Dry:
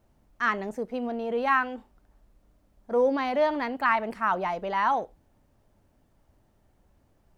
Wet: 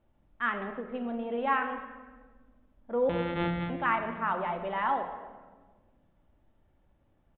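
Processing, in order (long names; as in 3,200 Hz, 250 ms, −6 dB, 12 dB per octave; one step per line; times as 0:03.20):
0:03.09–0:03.70: samples sorted by size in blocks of 256 samples
downsampling to 8,000 Hz
on a send at −5 dB: convolution reverb RT60 1.4 s, pre-delay 3 ms
on the sum: every ending faded ahead of time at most 160 dB per second
level −5 dB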